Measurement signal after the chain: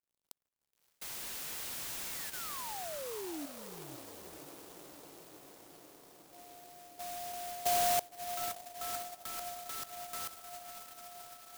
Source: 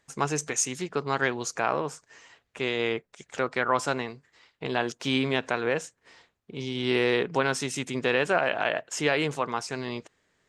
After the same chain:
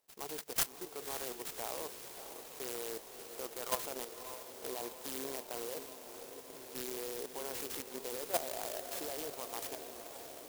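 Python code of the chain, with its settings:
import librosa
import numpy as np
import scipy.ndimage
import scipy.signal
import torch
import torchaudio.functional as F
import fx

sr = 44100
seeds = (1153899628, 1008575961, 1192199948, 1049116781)

p1 = scipy.signal.sosfilt(scipy.signal.butter(2, 510.0, 'highpass', fs=sr, output='sos'), x)
p2 = fx.peak_eq(p1, sr, hz=1600.0, db=-11.5, octaves=0.9)
p3 = fx.level_steps(p2, sr, step_db=13)
p4 = fx.dmg_crackle(p3, sr, seeds[0], per_s=100.0, level_db=-63.0)
p5 = p4 + fx.echo_diffused(p4, sr, ms=571, feedback_pct=75, wet_db=-9.5, dry=0)
p6 = fx.clock_jitter(p5, sr, seeds[1], jitter_ms=0.15)
y = F.gain(torch.from_numpy(p6), -2.5).numpy()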